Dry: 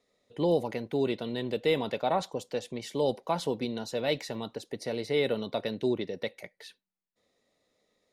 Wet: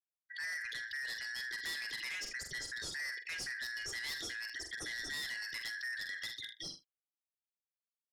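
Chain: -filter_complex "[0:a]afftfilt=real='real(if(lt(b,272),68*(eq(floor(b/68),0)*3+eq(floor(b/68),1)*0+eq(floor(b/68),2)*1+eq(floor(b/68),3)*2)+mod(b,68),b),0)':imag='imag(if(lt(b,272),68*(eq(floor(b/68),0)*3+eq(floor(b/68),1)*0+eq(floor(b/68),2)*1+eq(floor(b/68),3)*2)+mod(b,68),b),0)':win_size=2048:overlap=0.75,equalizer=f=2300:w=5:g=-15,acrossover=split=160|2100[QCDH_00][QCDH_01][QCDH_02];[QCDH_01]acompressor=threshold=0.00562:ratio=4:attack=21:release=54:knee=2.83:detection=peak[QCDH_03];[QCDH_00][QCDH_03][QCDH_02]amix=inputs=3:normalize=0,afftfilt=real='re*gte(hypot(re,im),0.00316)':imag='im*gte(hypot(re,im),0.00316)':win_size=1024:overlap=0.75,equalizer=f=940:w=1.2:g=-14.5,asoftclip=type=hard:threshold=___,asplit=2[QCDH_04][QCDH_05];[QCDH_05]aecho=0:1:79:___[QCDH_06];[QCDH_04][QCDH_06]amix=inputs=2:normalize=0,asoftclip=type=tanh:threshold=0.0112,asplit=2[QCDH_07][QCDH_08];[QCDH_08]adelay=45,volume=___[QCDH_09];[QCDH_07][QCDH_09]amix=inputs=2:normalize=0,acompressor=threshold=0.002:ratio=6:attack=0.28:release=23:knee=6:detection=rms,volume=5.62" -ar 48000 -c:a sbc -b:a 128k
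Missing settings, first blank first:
0.0422, 0.0794, 0.211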